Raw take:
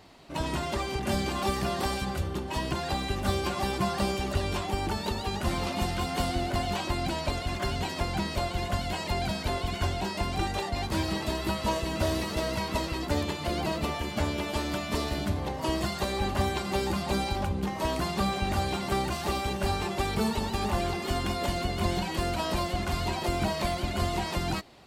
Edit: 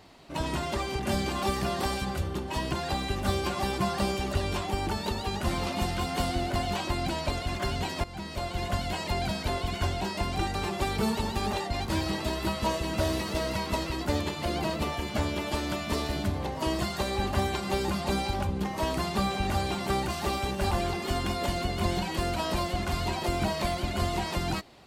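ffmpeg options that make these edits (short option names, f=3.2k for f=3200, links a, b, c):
-filter_complex "[0:a]asplit=5[a][b][c][d][e];[a]atrim=end=8.04,asetpts=PTS-STARTPTS,afade=t=out:st=8.036:d=0.004:c=hsin:silence=0.199526[f];[b]atrim=start=8.04:end=10.552,asetpts=PTS-STARTPTS,afade=t=in:d=0.63:silence=0.199526[g];[c]atrim=start=19.728:end=20.712[h];[d]atrim=start=10.548:end=19.732[i];[e]atrim=start=20.708[j];[f][g]concat=n=2:v=0:a=1[k];[k][h]acrossfade=d=0.004:c1=hsin:c2=hsin[l];[l][i]acrossfade=d=0.004:c1=hsin:c2=hsin[m];[m][j]acrossfade=d=0.004:c1=hsin:c2=hsin"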